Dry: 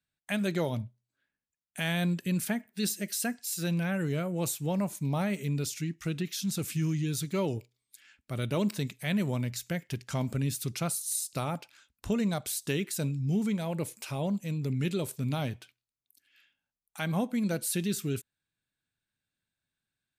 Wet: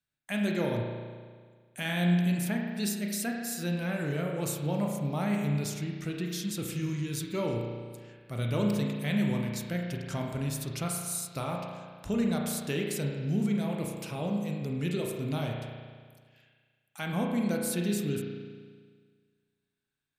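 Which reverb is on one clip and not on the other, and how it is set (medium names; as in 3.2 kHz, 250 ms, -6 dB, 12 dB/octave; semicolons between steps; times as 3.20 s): spring tank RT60 1.7 s, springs 34 ms, chirp 20 ms, DRR 0.5 dB; trim -2.5 dB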